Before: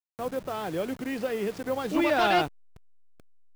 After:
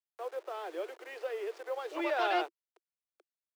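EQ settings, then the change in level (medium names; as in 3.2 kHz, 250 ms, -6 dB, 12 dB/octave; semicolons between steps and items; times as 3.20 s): steep high-pass 340 Hz 96 dB/octave; low-pass 3.9 kHz 6 dB/octave; -6.5 dB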